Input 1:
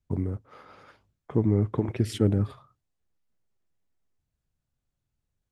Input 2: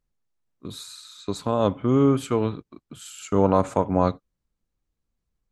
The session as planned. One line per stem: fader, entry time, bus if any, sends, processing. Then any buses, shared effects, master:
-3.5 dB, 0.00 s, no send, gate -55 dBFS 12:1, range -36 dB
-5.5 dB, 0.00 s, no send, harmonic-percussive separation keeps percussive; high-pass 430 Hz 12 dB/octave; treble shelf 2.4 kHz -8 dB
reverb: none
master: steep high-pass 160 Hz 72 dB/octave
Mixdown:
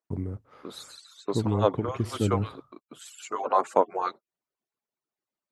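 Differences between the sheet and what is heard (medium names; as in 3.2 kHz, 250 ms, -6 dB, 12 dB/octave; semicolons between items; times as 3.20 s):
stem 2 -5.5 dB -> +4.0 dB; master: missing steep high-pass 160 Hz 72 dB/octave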